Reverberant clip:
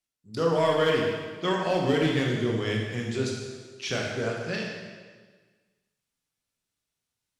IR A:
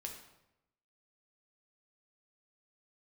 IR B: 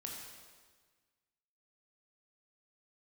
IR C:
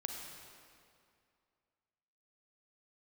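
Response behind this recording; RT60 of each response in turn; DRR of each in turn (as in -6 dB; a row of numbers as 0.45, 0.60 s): B; 0.90, 1.5, 2.4 s; 1.0, -1.5, 2.0 dB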